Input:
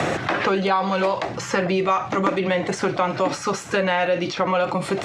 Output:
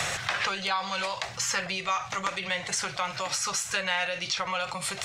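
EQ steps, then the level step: amplifier tone stack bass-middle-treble 10-0-10; bass shelf 490 Hz +3.5 dB; treble shelf 5.1 kHz +10 dB; 0.0 dB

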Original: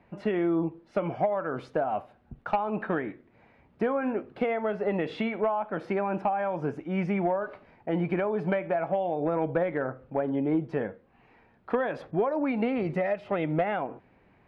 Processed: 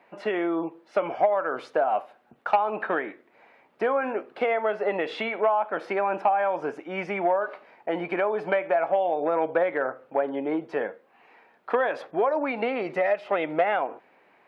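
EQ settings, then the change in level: high-pass 480 Hz 12 dB/octave; +6.0 dB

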